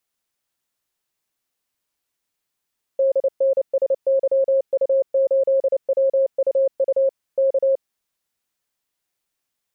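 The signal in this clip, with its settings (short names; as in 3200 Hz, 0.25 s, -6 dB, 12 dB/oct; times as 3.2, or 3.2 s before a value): Morse "DNSYU8WUU K" 29 wpm 539 Hz -14 dBFS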